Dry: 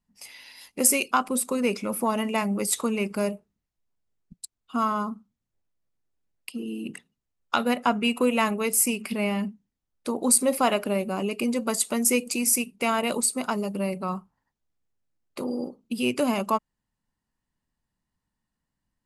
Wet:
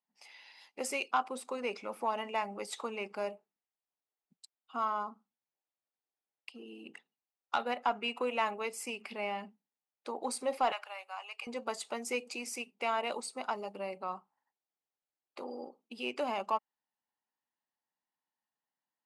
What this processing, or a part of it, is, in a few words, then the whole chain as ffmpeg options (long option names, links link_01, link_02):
intercom: -filter_complex "[0:a]highpass=440,lowpass=4500,equalizer=frequency=810:width_type=o:width=0.29:gain=7.5,asoftclip=type=tanh:threshold=-10.5dB,asettb=1/sr,asplit=3[link_01][link_02][link_03];[link_01]atrim=end=10.724[link_04];[link_02]atrim=start=10.72:end=11.47,asetpts=PTS-STARTPTS,afade=type=in:duration=0.004:curve=qsin,afade=type=out:start_time=0.746:duration=0.004:curve=qsin,highpass=frequency=880:width=0.5412,highpass=frequency=880:width=1.3066[link_05];[link_03]atrim=start=11.466[link_06];[link_04][link_05]acrossfade=duration=0.004:curve1=hsin:curve2=qsin[link_07];[link_07][link_06]acrossfade=duration=0.004:curve1=qsin:curve2=hsin,volume=-7.5dB"